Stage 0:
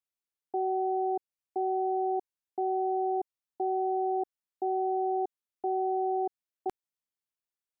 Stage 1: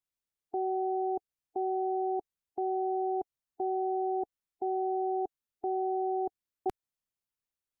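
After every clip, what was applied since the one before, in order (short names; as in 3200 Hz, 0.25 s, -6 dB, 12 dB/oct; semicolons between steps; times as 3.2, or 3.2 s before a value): harmonic-percussive split harmonic -3 dB; low shelf 160 Hz +10.5 dB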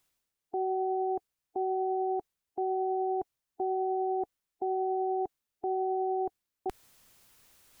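limiter -29 dBFS, peak gain reduction 7 dB; reverse; upward compressor, threshold -45 dBFS; reverse; gain +4.5 dB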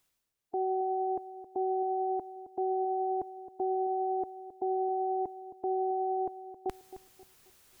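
darkening echo 0.267 s, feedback 39%, low-pass 1000 Hz, level -12 dB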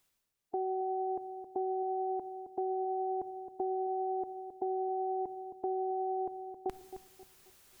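on a send at -16 dB: reverb RT60 0.85 s, pre-delay 5 ms; on the sum: compressor, threshold -31 dBFS, peak gain reduction 5 dB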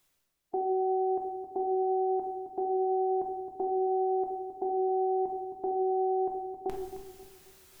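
shoebox room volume 230 m³, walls mixed, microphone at 0.92 m; gain +2 dB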